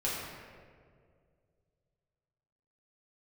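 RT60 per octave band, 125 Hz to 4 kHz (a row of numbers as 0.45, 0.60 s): 3.0, 2.3, 2.4, 1.7, 1.5, 1.1 s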